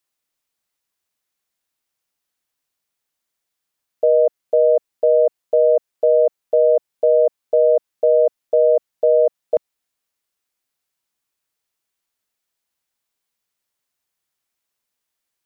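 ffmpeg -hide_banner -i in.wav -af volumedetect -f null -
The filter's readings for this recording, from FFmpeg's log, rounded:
mean_volume: -20.7 dB
max_volume: -7.2 dB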